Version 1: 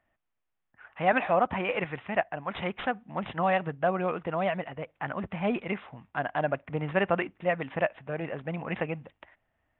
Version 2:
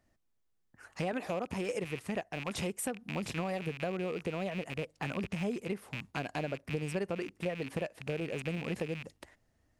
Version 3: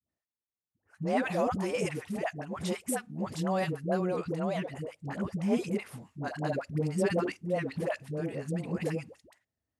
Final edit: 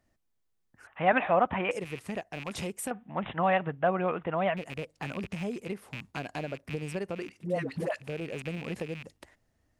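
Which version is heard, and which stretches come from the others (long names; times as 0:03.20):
2
0:00.87–0:01.71: punch in from 1
0:02.91–0:04.57: punch in from 1
0:07.37–0:08.05: punch in from 3, crossfade 0.16 s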